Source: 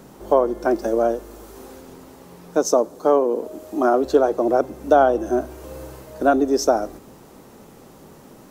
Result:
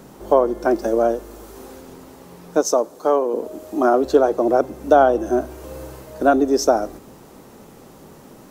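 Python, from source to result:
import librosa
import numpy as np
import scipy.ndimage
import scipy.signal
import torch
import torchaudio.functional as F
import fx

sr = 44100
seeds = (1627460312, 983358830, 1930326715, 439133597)

y = fx.low_shelf(x, sr, hz=350.0, db=-8.0, at=(2.61, 3.34))
y = y * librosa.db_to_amplitude(1.5)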